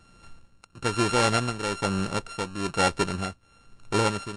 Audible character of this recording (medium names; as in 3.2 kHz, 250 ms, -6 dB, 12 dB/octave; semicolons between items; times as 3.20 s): a buzz of ramps at a fixed pitch in blocks of 32 samples; tremolo triangle 1.1 Hz, depth 75%; Vorbis